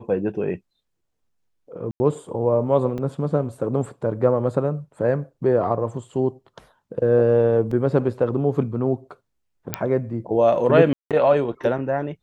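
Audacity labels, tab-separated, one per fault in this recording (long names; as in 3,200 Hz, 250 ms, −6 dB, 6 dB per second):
1.910000	2.000000	drop-out 90 ms
2.980000	2.990000	drop-out 5.6 ms
7.710000	7.710000	drop-out 3.8 ms
9.740000	9.740000	click −5 dBFS
10.930000	11.110000	drop-out 177 ms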